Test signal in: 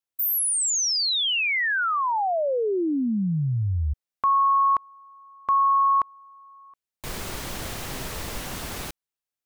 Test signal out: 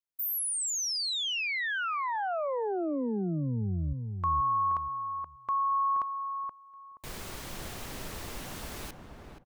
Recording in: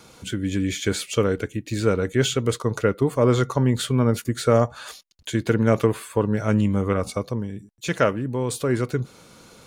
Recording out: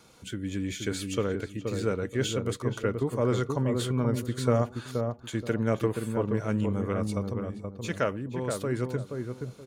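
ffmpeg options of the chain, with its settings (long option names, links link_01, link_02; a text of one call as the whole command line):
ffmpeg -i in.wav -filter_complex "[0:a]asplit=2[link_01][link_02];[link_02]adelay=476,lowpass=frequency=1000:poles=1,volume=-4dB,asplit=2[link_03][link_04];[link_04]adelay=476,lowpass=frequency=1000:poles=1,volume=0.29,asplit=2[link_05][link_06];[link_06]adelay=476,lowpass=frequency=1000:poles=1,volume=0.29,asplit=2[link_07][link_08];[link_08]adelay=476,lowpass=frequency=1000:poles=1,volume=0.29[link_09];[link_01][link_03][link_05][link_07][link_09]amix=inputs=5:normalize=0,volume=-8dB" out.wav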